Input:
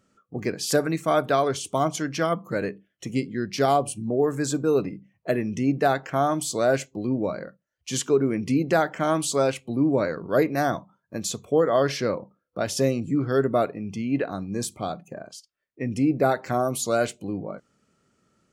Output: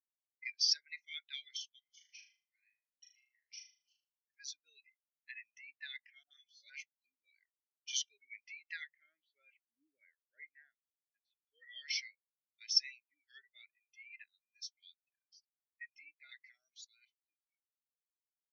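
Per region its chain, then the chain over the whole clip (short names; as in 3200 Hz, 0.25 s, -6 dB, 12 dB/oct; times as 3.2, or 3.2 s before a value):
1.79–4.3 compressor, threshold -35 dBFS + flutter echo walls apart 6.6 m, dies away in 0.85 s
6.23–6.7 de-esser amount 75% + doubler 14 ms -5 dB + dispersion highs, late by 78 ms, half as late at 640 Hz
8.9–11.47 LPF 1400 Hz + low shelf 190 Hz +11.5 dB
16.74–17.25 HPF 610 Hz + level quantiser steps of 16 dB
whole clip: elliptic band-pass 2000–6000 Hz, stop band 40 dB; spectral expander 2.5:1; gain +1 dB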